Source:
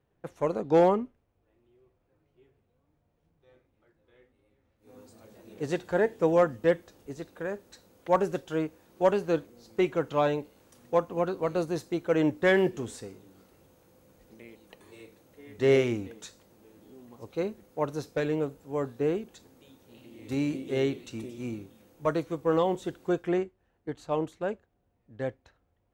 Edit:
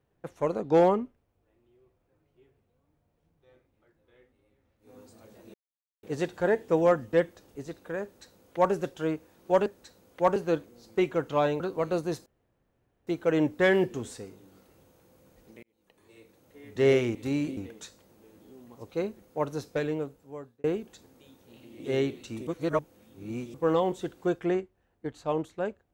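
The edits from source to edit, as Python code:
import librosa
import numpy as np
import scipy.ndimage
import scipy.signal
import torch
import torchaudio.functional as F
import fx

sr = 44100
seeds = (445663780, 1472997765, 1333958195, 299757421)

y = fx.edit(x, sr, fx.insert_silence(at_s=5.54, length_s=0.49),
    fx.duplicate(start_s=7.54, length_s=0.7, to_s=9.17),
    fx.cut(start_s=10.41, length_s=0.83),
    fx.insert_room_tone(at_s=11.9, length_s=0.81),
    fx.fade_in_span(start_s=14.46, length_s=1.01),
    fx.fade_out_span(start_s=18.14, length_s=0.91),
    fx.move(start_s=20.21, length_s=0.42, to_s=15.98),
    fx.reverse_span(start_s=21.3, length_s=1.07), tone=tone)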